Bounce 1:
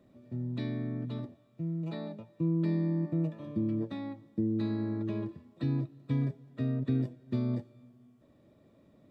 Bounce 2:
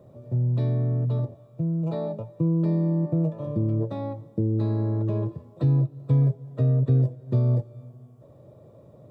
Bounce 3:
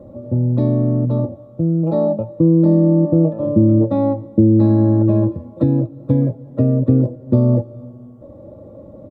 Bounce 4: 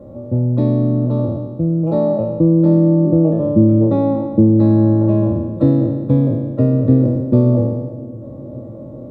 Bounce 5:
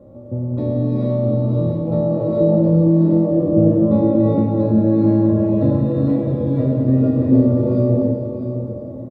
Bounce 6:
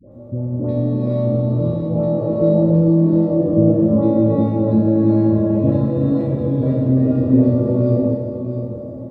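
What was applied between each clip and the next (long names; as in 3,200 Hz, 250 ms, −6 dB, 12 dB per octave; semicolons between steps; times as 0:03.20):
octave-band graphic EQ 125/250/500/1,000/2,000/4,000 Hz +12/−9/+10/+4/−10/−5 dB; in parallel at +2 dB: downward compressor, threshold −33 dBFS, peak gain reduction 13.5 dB
tilt shelving filter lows +9 dB, about 1,200 Hz; comb filter 3.6 ms, depth 75%; level +4.5 dB
peak hold with a decay on every bin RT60 1.35 s; bucket-brigade delay 549 ms, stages 2,048, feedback 81%, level −21.5 dB
single-tap delay 658 ms −9 dB; reverb whose tail is shaped and stops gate 490 ms rising, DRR −5 dB; level −7 dB
all-pass dispersion highs, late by 117 ms, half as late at 870 Hz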